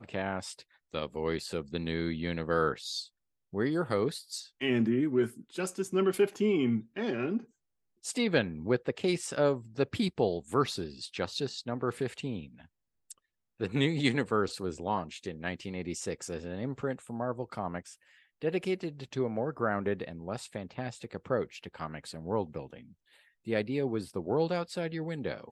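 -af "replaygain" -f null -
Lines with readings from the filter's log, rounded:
track_gain = +11.7 dB
track_peak = 0.180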